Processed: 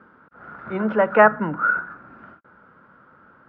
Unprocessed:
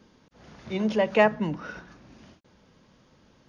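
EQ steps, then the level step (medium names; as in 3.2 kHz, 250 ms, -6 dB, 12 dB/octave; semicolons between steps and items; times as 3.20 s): high-pass 160 Hz 6 dB/octave; resonant low-pass 1.4 kHz, resonance Q 12; distance through air 94 m; +4.0 dB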